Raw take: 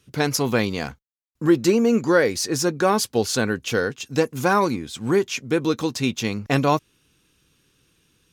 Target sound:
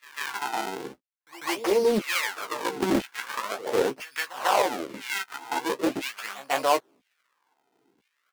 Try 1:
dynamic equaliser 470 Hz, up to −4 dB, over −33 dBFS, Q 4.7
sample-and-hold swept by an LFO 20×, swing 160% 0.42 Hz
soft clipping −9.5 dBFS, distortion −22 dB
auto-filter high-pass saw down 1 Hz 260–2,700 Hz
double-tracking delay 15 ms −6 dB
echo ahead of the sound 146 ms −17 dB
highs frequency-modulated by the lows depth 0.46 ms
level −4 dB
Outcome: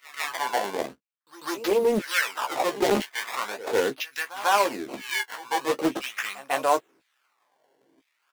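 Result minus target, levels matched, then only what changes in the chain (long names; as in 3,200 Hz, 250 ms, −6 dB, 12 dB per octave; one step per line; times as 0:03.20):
sample-and-hold swept by an LFO: distortion −6 dB
change: sample-and-hold swept by an LFO 44×, swing 160% 0.42 Hz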